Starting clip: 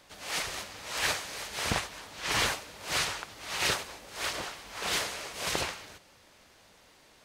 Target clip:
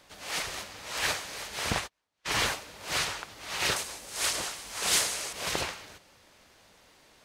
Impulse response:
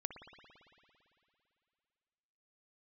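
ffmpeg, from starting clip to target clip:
-filter_complex "[0:a]asplit=3[link_01][link_02][link_03];[link_01]afade=type=out:start_time=1.86:duration=0.02[link_04];[link_02]agate=range=-37dB:threshold=-34dB:ratio=16:detection=peak,afade=type=in:start_time=1.86:duration=0.02,afade=type=out:start_time=2.44:duration=0.02[link_05];[link_03]afade=type=in:start_time=2.44:duration=0.02[link_06];[link_04][link_05][link_06]amix=inputs=3:normalize=0,asettb=1/sr,asplit=3[link_07][link_08][link_09];[link_07]atrim=end=3.764[link_10];[link_08]atrim=start=3.76:end=5.33,asetpts=PTS-STARTPTS,afade=type=in:duration=0.004:curve=qsin,afade=type=out:start_time=1.566:duration=0.004:curve=qsin,equalizer=frequency=9100:width=0.59:gain=11.5[link_11];[link_09]atrim=start=5.326[link_12];[link_10][link_11]acrossfade=duration=0.004:curve1=hsin:curve2=qsin[link_13];[link_13][link_12]acrossfade=duration=0.004:curve1=qsin:curve2=hsin"

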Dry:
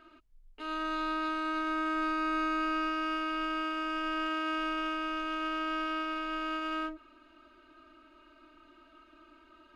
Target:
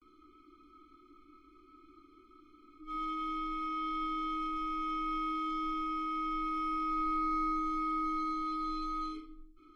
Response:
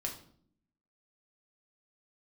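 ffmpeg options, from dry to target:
-filter_complex "[0:a]areverse,acontrast=38[link_01];[1:a]atrim=start_sample=2205[link_02];[link_01][link_02]afir=irnorm=-1:irlink=0,afftfilt=real='re*eq(mod(floor(b*sr/1024/500),2),0)':imag='im*eq(mod(floor(b*sr/1024/500),2),0)':win_size=1024:overlap=0.75,volume=-7.5dB"

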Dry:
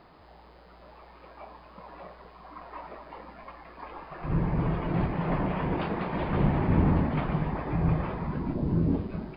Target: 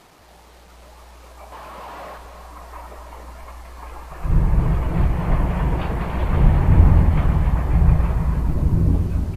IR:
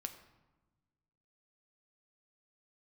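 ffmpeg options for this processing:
-filter_complex "[0:a]asubboost=boost=5.5:cutoff=98,asettb=1/sr,asplit=3[link_01][link_02][link_03];[link_01]atrim=end=1.524[link_04];[link_02]atrim=start=1.52:end=2.18,asetpts=PTS-STARTPTS,afade=type=in:duration=0.004:curve=qsin,afade=type=out:start_time=0.656:duration=0.004:curve=qsin,asplit=2[link_05][link_06];[link_06]highpass=frequency=720:poles=1,volume=28dB,asoftclip=type=tanh:threshold=-31.5dB[link_07];[link_05][link_07]amix=inputs=2:normalize=0,lowpass=frequency=1600:poles=1,volume=-6dB[link_08];[link_03]atrim=start=2.176[link_09];[link_04][link_08]acrossfade=duration=0.004:curve1=hsin:curve2=qsin[link_10];[link_10][link_09]acrossfade=duration=0.004:curve1=qsin:curve2=hsin,acrusher=bits=8:mix=0:aa=0.000001,aecho=1:1:284|568|852|1136|1420|1704|1988:0.355|0.202|0.115|0.0657|0.0375|0.0213|0.0122,volume=3.5dB" -ar 32000 -c:a libmp3lame -b:a 56k

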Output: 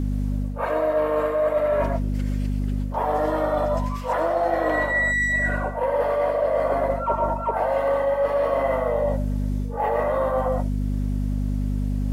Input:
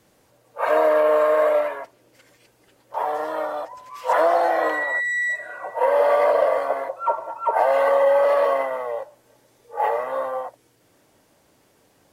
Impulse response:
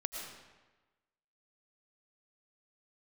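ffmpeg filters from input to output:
-filter_complex "[0:a]acontrast=37[link_01];[1:a]atrim=start_sample=2205,atrim=end_sample=6174[link_02];[link_01][link_02]afir=irnorm=-1:irlink=0,aeval=exprs='val(0)+0.0447*(sin(2*PI*50*n/s)+sin(2*PI*2*50*n/s)/2+sin(2*PI*3*50*n/s)/3+sin(2*PI*4*50*n/s)/4+sin(2*PI*5*50*n/s)/5)':channel_layout=same,equalizer=frequency=320:width=1.6:gain=10,areverse,acompressor=threshold=-24dB:ratio=12,areverse,volume=5dB"

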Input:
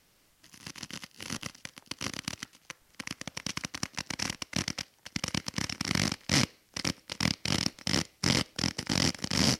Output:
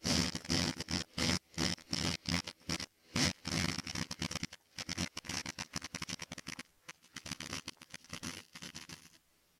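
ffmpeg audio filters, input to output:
ffmpeg -i in.wav -filter_complex "[0:a]areverse,asplit=2[link_01][link_02];[link_02]adelay=12,volume=-2.5dB[link_03];[link_01][link_03]amix=inputs=2:normalize=0,volume=-8dB" out.wav

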